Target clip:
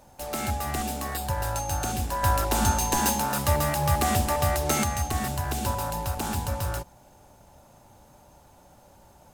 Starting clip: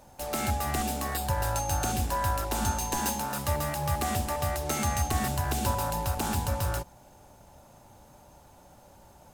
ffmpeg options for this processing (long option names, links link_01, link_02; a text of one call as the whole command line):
ffmpeg -i in.wav -filter_complex "[0:a]asettb=1/sr,asplit=3[link_01][link_02][link_03];[link_01]atrim=end=2.234[link_04];[link_02]atrim=start=2.23:end=4.84,asetpts=PTS-STARTPTS,afade=type=in:duration=0.004:curve=qsin,afade=type=out:start_time=2.606:duration=0.004:curve=qsin,acontrast=38[link_05];[link_03]atrim=start=4.836[link_06];[link_04][link_05]acrossfade=duration=0.004:curve1=hsin:curve2=qsin[link_07];[link_07][link_06]acrossfade=duration=0.004:curve1=qsin:curve2=hsin" out.wav